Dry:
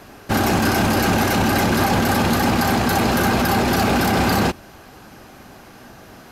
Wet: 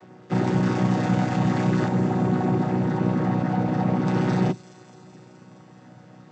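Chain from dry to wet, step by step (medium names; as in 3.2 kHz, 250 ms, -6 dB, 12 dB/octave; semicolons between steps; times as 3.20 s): vocoder on a held chord major triad, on B2; 1.88–4.07 s: treble shelf 2.3 kHz -11 dB; feedback echo behind a high-pass 212 ms, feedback 74%, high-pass 5.4 kHz, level -8 dB; trim -3 dB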